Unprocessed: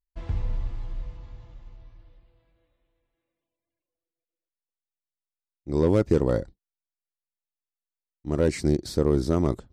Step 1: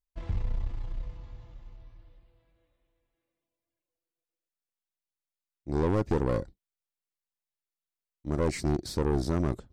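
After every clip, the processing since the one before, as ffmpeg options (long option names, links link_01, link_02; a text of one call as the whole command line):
ffmpeg -i in.wav -af "aeval=exprs='(tanh(11.2*val(0)+0.5)-tanh(0.5))/11.2':channel_layout=same" out.wav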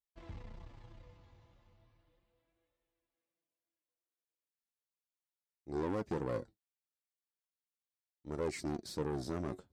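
ffmpeg -i in.wav -af "highpass=frequency=170:poles=1,flanger=delay=2.2:depth=8.9:regen=52:speed=0.36:shape=sinusoidal,volume=-3.5dB" out.wav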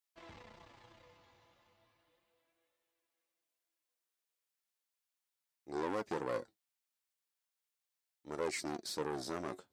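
ffmpeg -i in.wav -af "highpass=frequency=730:poles=1,volume=5dB" out.wav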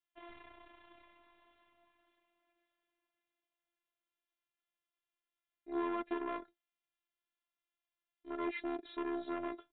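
ffmpeg -i in.wav -af "aresample=8000,aresample=44100,afftfilt=real='hypot(re,im)*cos(PI*b)':imag='0':win_size=512:overlap=0.75,volume=4dB" out.wav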